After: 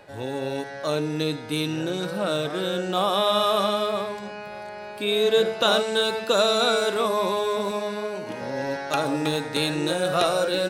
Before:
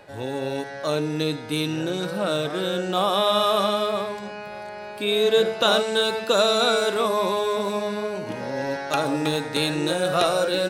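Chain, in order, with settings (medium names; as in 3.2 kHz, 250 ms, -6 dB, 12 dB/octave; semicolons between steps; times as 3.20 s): 7.71–8.42 s: bass shelf 120 Hz -11.5 dB; trim -1 dB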